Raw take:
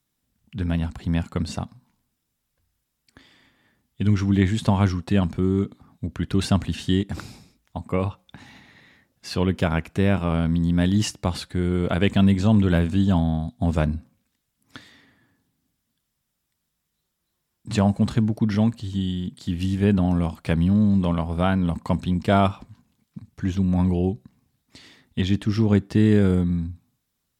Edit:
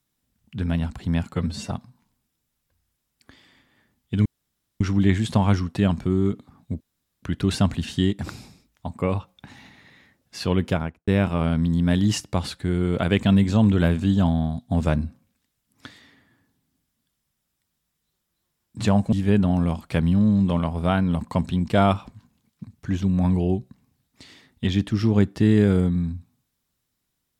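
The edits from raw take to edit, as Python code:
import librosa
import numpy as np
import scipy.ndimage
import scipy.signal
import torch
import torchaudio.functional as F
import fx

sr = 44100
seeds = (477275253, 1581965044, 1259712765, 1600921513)

y = fx.studio_fade_out(x, sr, start_s=9.56, length_s=0.42)
y = fx.edit(y, sr, fx.stretch_span(start_s=1.34, length_s=0.25, factor=1.5),
    fx.insert_room_tone(at_s=4.13, length_s=0.55),
    fx.insert_room_tone(at_s=6.13, length_s=0.42),
    fx.cut(start_s=18.03, length_s=1.64), tone=tone)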